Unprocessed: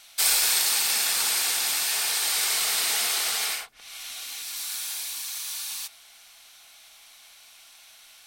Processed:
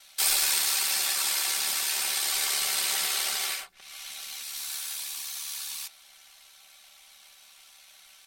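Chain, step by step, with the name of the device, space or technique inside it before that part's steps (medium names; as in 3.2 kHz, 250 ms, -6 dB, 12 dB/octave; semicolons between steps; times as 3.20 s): 0.65–1.56 s: tone controls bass -6 dB, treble 0 dB; ring-modulated robot voice (ring modulator 36 Hz; comb 5.2 ms, depth 85%); trim -2 dB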